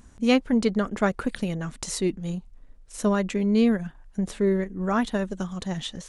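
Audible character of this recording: noise floor -51 dBFS; spectral tilt -5.5 dB/octave

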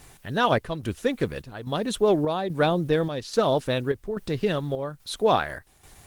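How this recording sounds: a quantiser's noise floor 10-bit, dither triangular; chopped level 1.2 Hz, depth 60%, duty 70%; Opus

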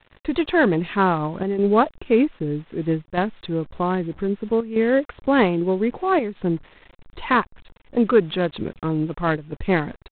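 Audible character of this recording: a quantiser's noise floor 8-bit, dither none; chopped level 0.63 Hz, depth 60%, duty 90%; IMA ADPCM

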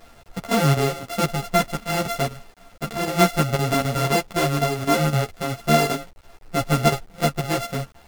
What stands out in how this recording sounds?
a buzz of ramps at a fixed pitch in blocks of 64 samples; chopped level 3.9 Hz, depth 65%, duty 85%; a quantiser's noise floor 8-bit, dither none; a shimmering, thickened sound

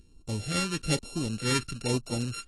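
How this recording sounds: a buzz of ramps at a fixed pitch in blocks of 32 samples; phasing stages 2, 1.1 Hz, lowest notch 680–1600 Hz; AAC

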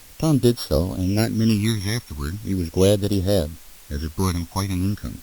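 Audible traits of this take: a buzz of ramps at a fixed pitch in blocks of 8 samples; phasing stages 12, 0.39 Hz, lowest notch 470–2200 Hz; a quantiser's noise floor 8-bit, dither triangular; Opus

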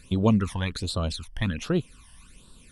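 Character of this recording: phasing stages 12, 1.3 Hz, lowest notch 400–2200 Hz

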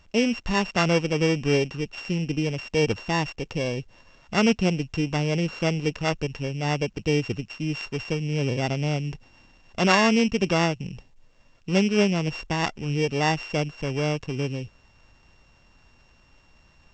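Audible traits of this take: a buzz of ramps at a fixed pitch in blocks of 16 samples; A-law

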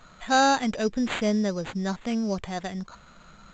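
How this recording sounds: aliases and images of a low sample rate 5.4 kHz, jitter 0%; A-law

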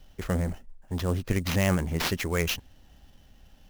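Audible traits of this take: aliases and images of a low sample rate 8.8 kHz, jitter 20%

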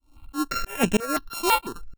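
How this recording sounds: a buzz of ramps at a fixed pitch in blocks of 32 samples; tremolo saw up 3.1 Hz, depth 100%; notches that jump at a steady rate 6 Hz 450–4500 Hz

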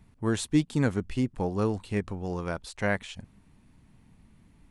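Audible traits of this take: noise floor -60 dBFS; spectral tilt -6.0 dB/octave

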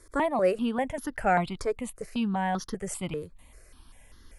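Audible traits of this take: notches that jump at a steady rate 5.1 Hz 770–2400 Hz

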